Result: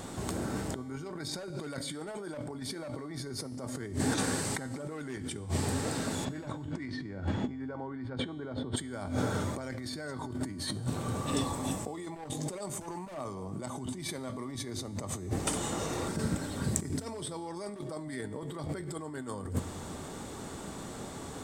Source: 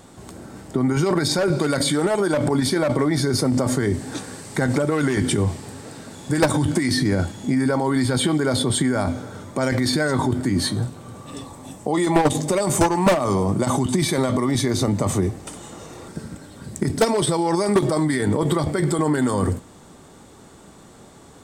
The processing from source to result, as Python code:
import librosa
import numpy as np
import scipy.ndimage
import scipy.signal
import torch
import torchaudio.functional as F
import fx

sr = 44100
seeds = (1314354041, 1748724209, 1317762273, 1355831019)

y = fx.lowpass(x, sr, hz=fx.line((6.24, 3700.0), (8.76, 1500.0)), slope=12, at=(6.24, 8.76), fade=0.02)
y = fx.over_compress(y, sr, threshold_db=-32.0, ratio=-1.0)
y = fx.comb_fb(y, sr, f0_hz=88.0, decay_s=1.7, harmonics='odd', damping=0.0, mix_pct=60)
y = y * librosa.db_to_amplitude(2.5)